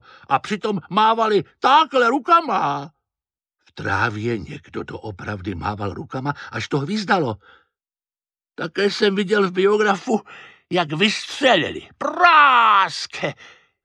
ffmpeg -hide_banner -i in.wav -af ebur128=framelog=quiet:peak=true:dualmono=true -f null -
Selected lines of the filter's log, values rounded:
Integrated loudness:
  I:         -15.8 LUFS
  Threshold: -26.5 LUFS
Loudness range:
  LRA:         9.5 LU
  Threshold: -37.6 LUFS
  LRA low:   -23.3 LUFS
  LRA high:  -13.8 LUFS
True peak:
  Peak:       -2.3 dBFS